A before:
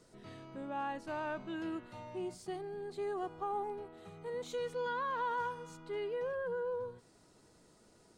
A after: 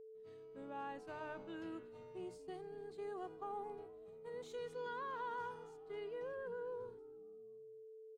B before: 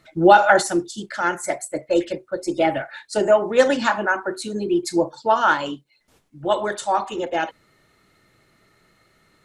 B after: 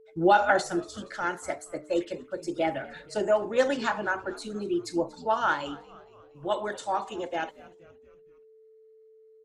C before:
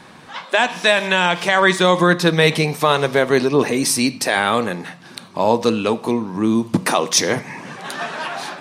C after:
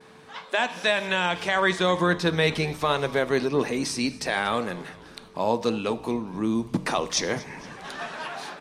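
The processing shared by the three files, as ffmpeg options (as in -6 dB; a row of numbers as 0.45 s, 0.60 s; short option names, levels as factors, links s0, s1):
-filter_complex "[0:a]agate=range=0.0224:threshold=0.00708:ratio=3:detection=peak,acrossover=split=7500[s0][s1];[s1]acompressor=threshold=0.00794:ratio=4:attack=1:release=60[s2];[s0][s2]amix=inputs=2:normalize=0,bandreject=f=303.6:t=h:w=4,bandreject=f=607.2:t=h:w=4,bandreject=f=910.8:t=h:w=4,asplit=5[s3][s4][s5][s6][s7];[s4]adelay=235,afreqshift=-90,volume=0.0944[s8];[s5]adelay=470,afreqshift=-180,volume=0.0501[s9];[s6]adelay=705,afreqshift=-270,volume=0.0266[s10];[s7]adelay=940,afreqshift=-360,volume=0.0141[s11];[s3][s8][s9][s10][s11]amix=inputs=5:normalize=0,aeval=exprs='val(0)+0.00562*sin(2*PI*440*n/s)':c=same,volume=0.398"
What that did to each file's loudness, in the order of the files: -8.0 LU, -8.0 LU, -8.0 LU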